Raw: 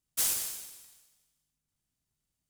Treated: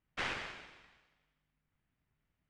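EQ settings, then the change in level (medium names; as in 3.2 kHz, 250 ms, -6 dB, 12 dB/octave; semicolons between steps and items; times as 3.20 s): four-pole ladder low-pass 2.7 kHz, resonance 30%; +12.0 dB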